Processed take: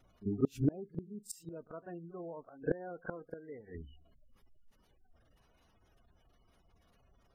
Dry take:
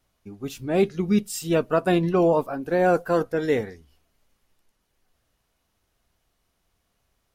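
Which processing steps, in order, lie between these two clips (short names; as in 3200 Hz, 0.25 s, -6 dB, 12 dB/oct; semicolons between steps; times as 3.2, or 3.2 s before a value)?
spectral gate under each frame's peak -20 dB strong; flipped gate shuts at -23 dBFS, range -31 dB; pre-echo 41 ms -16 dB; gain +5.5 dB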